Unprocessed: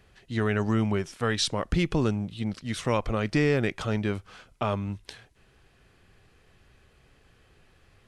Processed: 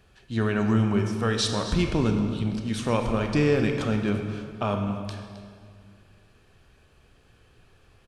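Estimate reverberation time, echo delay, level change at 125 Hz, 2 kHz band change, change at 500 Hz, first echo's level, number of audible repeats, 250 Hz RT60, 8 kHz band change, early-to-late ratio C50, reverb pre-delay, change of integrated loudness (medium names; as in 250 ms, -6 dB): 2.1 s, 265 ms, +2.5 dB, 0.0 dB, +2.0 dB, -15.0 dB, 1, 2.6 s, +1.0 dB, 5.0 dB, 21 ms, +2.0 dB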